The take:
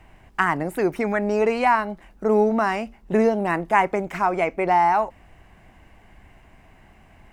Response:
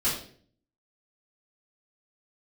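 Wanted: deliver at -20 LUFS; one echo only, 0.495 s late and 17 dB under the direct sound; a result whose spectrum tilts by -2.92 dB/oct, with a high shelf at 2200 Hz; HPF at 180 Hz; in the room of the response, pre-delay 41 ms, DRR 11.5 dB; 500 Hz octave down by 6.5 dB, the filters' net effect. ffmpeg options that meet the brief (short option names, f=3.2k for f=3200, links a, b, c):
-filter_complex "[0:a]highpass=180,equalizer=f=500:t=o:g=-9,highshelf=f=2.2k:g=7,aecho=1:1:495:0.141,asplit=2[a][b];[1:a]atrim=start_sample=2205,adelay=41[c];[b][c]afir=irnorm=-1:irlink=0,volume=-21dB[d];[a][d]amix=inputs=2:normalize=0,volume=3.5dB"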